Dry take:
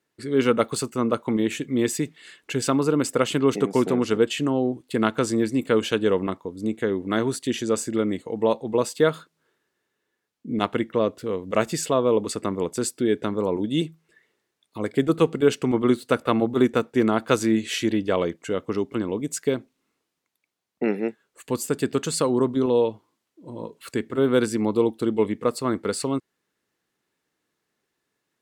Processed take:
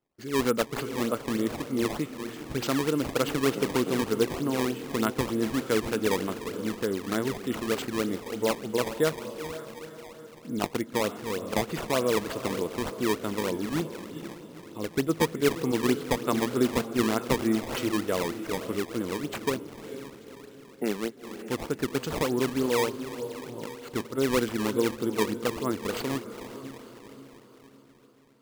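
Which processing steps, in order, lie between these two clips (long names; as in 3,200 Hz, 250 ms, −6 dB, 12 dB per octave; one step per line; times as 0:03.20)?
feedback delay with all-pass diffusion 464 ms, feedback 51%, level −10 dB
sample-and-hold swept by an LFO 18×, swing 160% 3.3 Hz
level −5.5 dB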